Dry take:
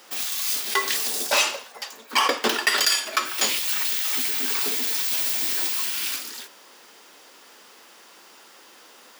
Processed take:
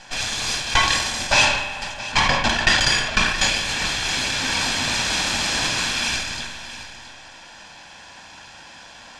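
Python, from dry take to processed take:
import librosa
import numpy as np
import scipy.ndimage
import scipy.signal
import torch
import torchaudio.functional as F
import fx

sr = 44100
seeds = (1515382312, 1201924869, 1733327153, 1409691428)

p1 = fx.lower_of_two(x, sr, delay_ms=1.2)
p2 = scipy.signal.sosfilt(scipy.signal.butter(4, 7400.0, 'lowpass', fs=sr, output='sos'), p1)
p3 = fx.bass_treble(p2, sr, bass_db=4, treble_db=-10)
p4 = p3 + fx.echo_single(p3, sr, ms=671, db=-14.0, dry=0)
p5 = fx.rider(p4, sr, range_db=4, speed_s=2.0)
p6 = fx.high_shelf(p5, sr, hz=3300.0, db=10.0)
p7 = fx.rev_spring(p6, sr, rt60_s=2.1, pass_ms=(34, 43), chirp_ms=50, drr_db=6.5)
p8 = fx.sustainer(p7, sr, db_per_s=55.0)
y = p8 * 10.0 ** (4.0 / 20.0)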